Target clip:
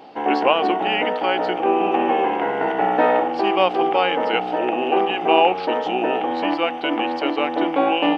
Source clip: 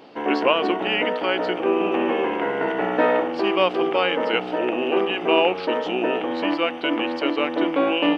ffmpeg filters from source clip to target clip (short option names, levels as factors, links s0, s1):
-af "equalizer=f=790:w=6.3:g=13"